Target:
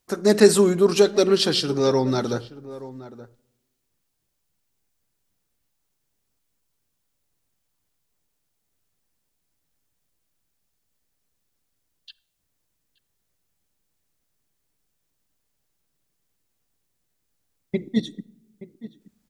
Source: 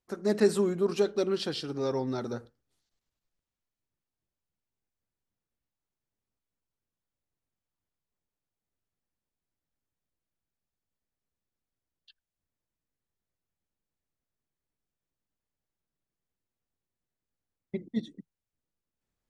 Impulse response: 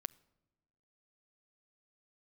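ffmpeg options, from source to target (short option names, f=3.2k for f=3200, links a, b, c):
-filter_complex "[0:a]asplit=2[a][b];[b]adelay=874.6,volume=-16dB,highshelf=f=4k:g=-19.7[c];[a][c]amix=inputs=2:normalize=0,asplit=2[d][e];[1:a]atrim=start_sample=2205,highshelf=f=3.3k:g=9[f];[e][f]afir=irnorm=-1:irlink=0,volume=14dB[g];[d][g]amix=inputs=2:normalize=0,volume=-3.5dB"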